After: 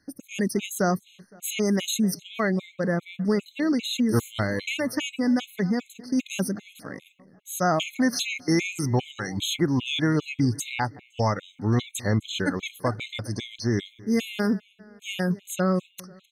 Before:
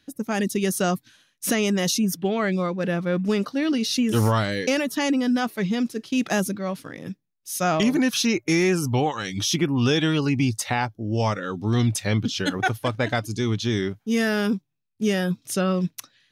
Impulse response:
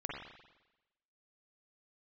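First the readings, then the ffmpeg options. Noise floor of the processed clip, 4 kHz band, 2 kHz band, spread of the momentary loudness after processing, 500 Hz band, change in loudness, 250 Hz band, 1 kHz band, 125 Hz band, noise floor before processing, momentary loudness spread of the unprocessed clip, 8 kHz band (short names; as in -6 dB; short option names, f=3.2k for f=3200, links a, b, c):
-61 dBFS, -3.0 dB, -3.5 dB, 8 LU, -3.5 dB, -3.0 dB, -2.5 dB, -3.5 dB, -3.0 dB, -70 dBFS, 7 LU, -4.0 dB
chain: -filter_complex "[0:a]asplit=2[a][b];[b]adelay=257,lowpass=f=4.5k:p=1,volume=-21.5dB,asplit=2[c][d];[d]adelay=257,lowpass=f=4.5k:p=1,volume=0.53,asplit=2[e][f];[f]adelay=257,lowpass=f=4.5k:p=1,volume=0.53,asplit=2[g][h];[h]adelay=257,lowpass=f=4.5k:p=1,volume=0.53[i];[a][c][e][g][i]amix=inputs=5:normalize=0,afftfilt=real='re*gt(sin(2*PI*2.5*pts/sr)*(1-2*mod(floor(b*sr/1024/2100),2)),0)':imag='im*gt(sin(2*PI*2.5*pts/sr)*(1-2*mod(floor(b*sr/1024/2100),2)),0)':win_size=1024:overlap=0.75"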